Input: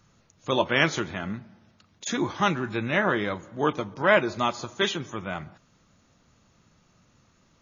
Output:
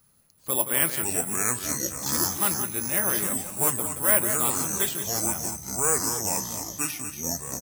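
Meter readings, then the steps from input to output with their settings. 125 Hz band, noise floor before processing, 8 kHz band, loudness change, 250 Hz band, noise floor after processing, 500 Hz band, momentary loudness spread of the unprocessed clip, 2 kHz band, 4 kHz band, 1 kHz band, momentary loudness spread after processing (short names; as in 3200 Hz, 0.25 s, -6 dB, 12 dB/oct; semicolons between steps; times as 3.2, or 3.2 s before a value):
-2.0 dB, -64 dBFS, n/a, +2.5 dB, -3.5 dB, -61 dBFS, -5.0 dB, 14 LU, -5.5 dB, -2.0 dB, -3.5 dB, 8 LU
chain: echo 0.175 s -9.5 dB; careless resampling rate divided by 4×, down none, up zero stuff; echoes that change speed 0.387 s, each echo -5 st, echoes 2; gain -7.5 dB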